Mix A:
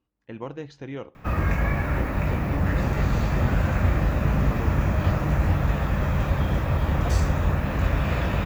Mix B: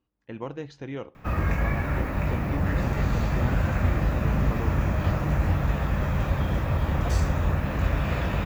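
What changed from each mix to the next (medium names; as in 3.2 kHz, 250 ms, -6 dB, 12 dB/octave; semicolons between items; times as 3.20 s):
reverb: off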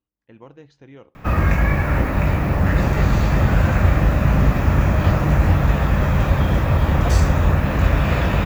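speech -8.5 dB; background +8.0 dB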